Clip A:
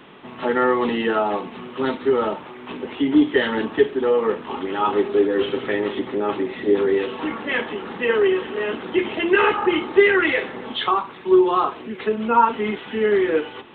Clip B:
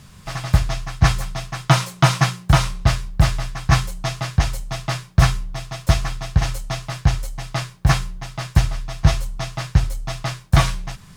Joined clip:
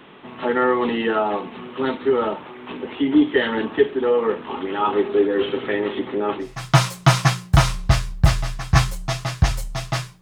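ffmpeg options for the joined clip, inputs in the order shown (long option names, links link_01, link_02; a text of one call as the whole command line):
ffmpeg -i cue0.wav -i cue1.wav -filter_complex "[0:a]apad=whole_dur=10.21,atrim=end=10.21,atrim=end=6.63,asetpts=PTS-STARTPTS[link_01];[1:a]atrim=start=1.29:end=5.17,asetpts=PTS-STARTPTS[link_02];[link_01][link_02]acrossfade=duration=0.3:curve1=qua:curve2=qua" out.wav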